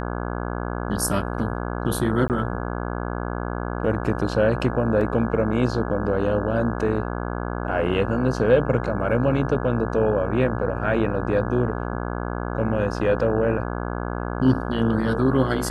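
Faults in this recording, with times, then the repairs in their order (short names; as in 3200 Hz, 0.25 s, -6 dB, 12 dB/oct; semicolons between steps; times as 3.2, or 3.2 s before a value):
buzz 60 Hz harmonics 28 -28 dBFS
2.28–2.3 gap 18 ms
5.01 gap 2.1 ms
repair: de-hum 60 Hz, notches 28; interpolate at 2.28, 18 ms; interpolate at 5.01, 2.1 ms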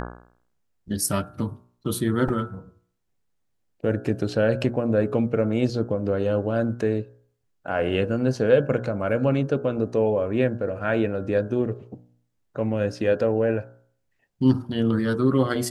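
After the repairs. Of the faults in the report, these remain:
none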